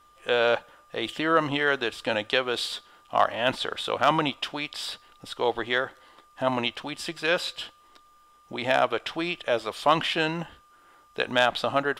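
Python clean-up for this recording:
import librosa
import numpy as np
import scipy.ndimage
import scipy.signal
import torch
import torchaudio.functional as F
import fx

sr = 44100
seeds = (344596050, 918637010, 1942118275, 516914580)

y = fx.fix_declip(x, sr, threshold_db=-8.5)
y = fx.notch(y, sr, hz=1200.0, q=30.0)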